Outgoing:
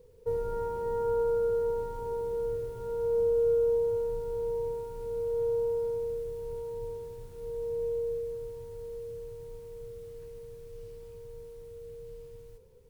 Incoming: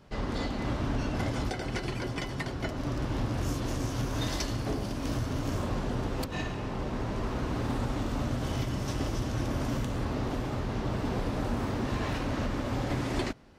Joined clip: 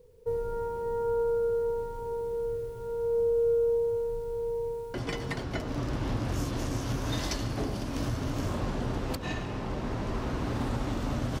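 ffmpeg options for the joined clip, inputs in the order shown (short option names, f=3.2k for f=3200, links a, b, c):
-filter_complex "[0:a]apad=whole_dur=11.4,atrim=end=11.4,atrim=end=4.942[a];[1:a]atrim=start=2.028:end=8.49[b];[a][b]acrossfade=d=0.004:c1=hsin:c2=hsin,asplit=2[c][d];[d]afade=t=in:st=4.58:d=0.01,afade=t=out:st=4.94:d=0.01,aecho=0:1:490|980|1470|1960|2450:0.398107|0.179148|0.0806167|0.0362775|0.0163249[e];[c][e]amix=inputs=2:normalize=0"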